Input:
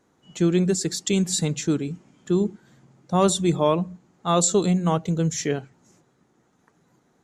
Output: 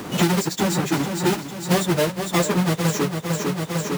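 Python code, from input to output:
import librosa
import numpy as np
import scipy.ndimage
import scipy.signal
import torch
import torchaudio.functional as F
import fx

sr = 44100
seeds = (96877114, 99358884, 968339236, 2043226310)

y = fx.halfwave_hold(x, sr)
y = fx.highpass(y, sr, hz=170.0, slope=6)
y = fx.low_shelf(y, sr, hz=270.0, db=4.0)
y = fx.stretch_vocoder_free(y, sr, factor=0.55)
y = fx.echo_feedback(y, sr, ms=452, feedback_pct=43, wet_db=-12.0)
y = fx.band_squash(y, sr, depth_pct=100)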